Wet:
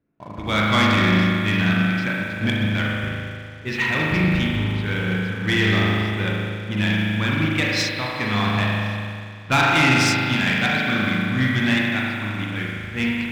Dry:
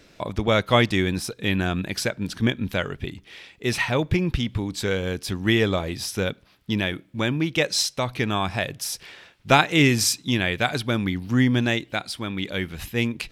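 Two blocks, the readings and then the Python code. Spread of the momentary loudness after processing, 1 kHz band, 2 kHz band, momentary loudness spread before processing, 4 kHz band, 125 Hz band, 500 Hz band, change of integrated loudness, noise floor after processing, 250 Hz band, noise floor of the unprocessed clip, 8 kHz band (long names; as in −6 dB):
10 LU, +3.0 dB, +6.0 dB, 11 LU, +2.0 dB, +4.0 dB, −3.0 dB, +3.0 dB, −36 dBFS, +3.0 dB, −56 dBFS, −5.0 dB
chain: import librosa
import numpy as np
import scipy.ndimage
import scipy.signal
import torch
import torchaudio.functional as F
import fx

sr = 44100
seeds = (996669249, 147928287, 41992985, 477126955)

y = scipy.signal.sosfilt(scipy.signal.butter(2, 6300.0, 'lowpass', fs=sr, output='sos'), x)
y = fx.peak_eq(y, sr, hz=500.0, db=-14.0, octaves=1.6)
y = fx.env_lowpass(y, sr, base_hz=670.0, full_db=-19.0)
y = 10.0 ** (-14.5 / 20.0) * np.tanh(y / 10.0 ** (-14.5 / 20.0))
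y = fx.highpass(y, sr, hz=190.0, slope=6)
y = fx.high_shelf(y, sr, hz=4500.0, db=-6.5)
y = fx.echo_bbd(y, sr, ms=104, stages=1024, feedback_pct=70, wet_db=-11)
y = fx.rev_spring(y, sr, rt60_s=3.0, pass_ms=(38,), chirp_ms=65, drr_db=-4.5)
y = fx.leveller(y, sr, passes=2)
y = fx.upward_expand(y, sr, threshold_db=-29.0, expansion=1.5)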